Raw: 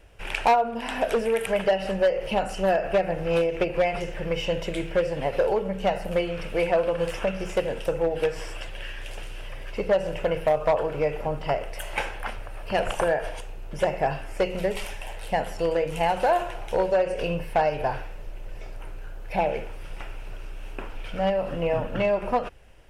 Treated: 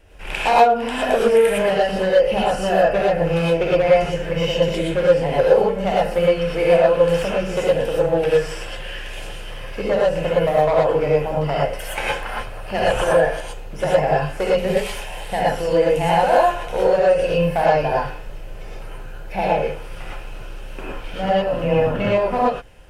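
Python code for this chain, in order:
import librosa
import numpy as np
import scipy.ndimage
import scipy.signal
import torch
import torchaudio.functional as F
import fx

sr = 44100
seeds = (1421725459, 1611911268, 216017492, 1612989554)

y = fx.rev_gated(x, sr, seeds[0], gate_ms=140, shape='rising', drr_db=-5.5)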